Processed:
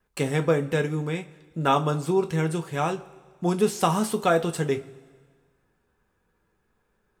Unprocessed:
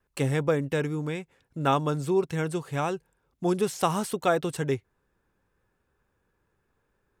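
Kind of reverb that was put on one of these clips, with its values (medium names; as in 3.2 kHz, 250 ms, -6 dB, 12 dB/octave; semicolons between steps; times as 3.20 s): two-slope reverb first 0.21 s, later 1.6 s, from -21 dB, DRR 5 dB; trim +1.5 dB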